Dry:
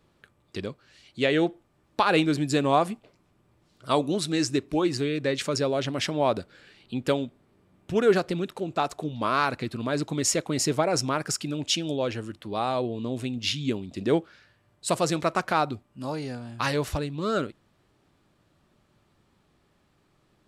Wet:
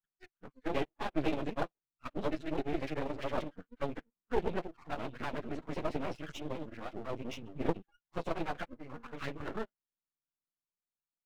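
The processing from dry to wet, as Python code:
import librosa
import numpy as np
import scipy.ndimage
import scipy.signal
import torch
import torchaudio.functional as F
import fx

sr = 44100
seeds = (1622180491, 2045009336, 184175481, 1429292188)

p1 = fx.block_reorder(x, sr, ms=151.0, group=2)
p2 = fx.highpass(p1, sr, hz=320.0, slope=6)
p3 = fx.env_phaser(p2, sr, low_hz=510.0, high_hz=1400.0, full_db=-21.0)
p4 = np.repeat(p3[::3], 3)[:len(p3)]
p5 = fx.stretch_vocoder_free(p4, sr, factor=0.55)
p6 = fx.noise_reduce_blind(p5, sr, reduce_db=30)
p7 = fx.quant_float(p6, sr, bits=2)
p8 = p6 + (p7 * 10.0 ** (-7.0 / 20.0))
p9 = scipy.signal.sosfilt(scipy.signal.butter(2, 1900.0, 'lowpass', fs=sr, output='sos'), p8)
y = np.maximum(p9, 0.0)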